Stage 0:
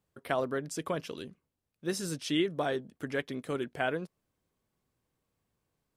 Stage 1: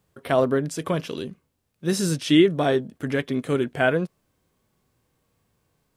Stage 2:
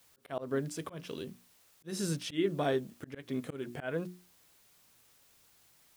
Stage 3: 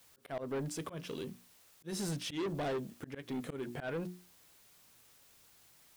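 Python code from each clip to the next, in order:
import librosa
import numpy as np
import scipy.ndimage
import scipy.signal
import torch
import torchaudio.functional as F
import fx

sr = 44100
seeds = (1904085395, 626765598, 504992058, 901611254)

y1 = fx.hpss(x, sr, part='harmonic', gain_db=9)
y1 = y1 * 10.0 ** (5.0 / 20.0)
y2 = fx.dmg_noise_colour(y1, sr, seeds[0], colour='white', level_db=-56.0)
y2 = fx.hum_notches(y2, sr, base_hz=60, count=6)
y2 = fx.auto_swell(y2, sr, attack_ms=195.0)
y2 = y2 * 10.0 ** (-9.0 / 20.0)
y3 = 10.0 ** (-34.0 / 20.0) * np.tanh(y2 / 10.0 ** (-34.0 / 20.0))
y3 = y3 * 10.0 ** (1.5 / 20.0)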